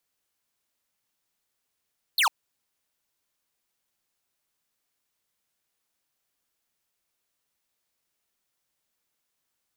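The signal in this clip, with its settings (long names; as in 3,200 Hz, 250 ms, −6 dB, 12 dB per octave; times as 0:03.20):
single falling chirp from 4,600 Hz, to 790 Hz, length 0.10 s square, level −21 dB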